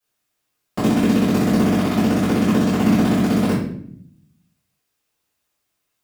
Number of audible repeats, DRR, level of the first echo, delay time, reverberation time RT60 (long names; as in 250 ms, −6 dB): no echo audible, −14.5 dB, no echo audible, no echo audible, 0.65 s